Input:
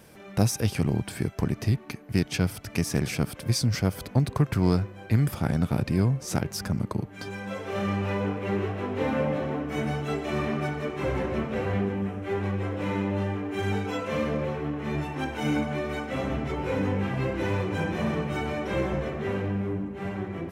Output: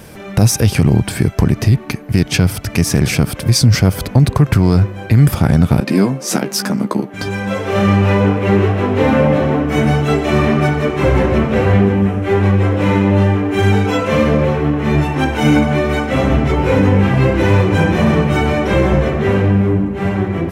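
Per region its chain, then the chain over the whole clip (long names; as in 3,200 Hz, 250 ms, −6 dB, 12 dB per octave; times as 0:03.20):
0:05.80–0:07.14: Chebyshev high-pass filter 220 Hz, order 3 + double-tracking delay 15 ms −7 dB + one half of a high-frequency compander decoder only
whole clip: low-shelf EQ 110 Hz +6.5 dB; boost into a limiter +15.5 dB; level −1.5 dB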